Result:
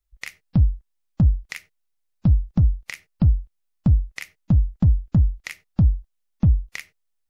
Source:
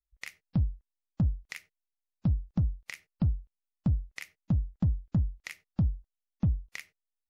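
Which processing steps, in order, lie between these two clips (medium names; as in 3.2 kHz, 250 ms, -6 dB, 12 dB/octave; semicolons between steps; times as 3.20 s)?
bass shelf 67 Hz +8 dB; trim +7.5 dB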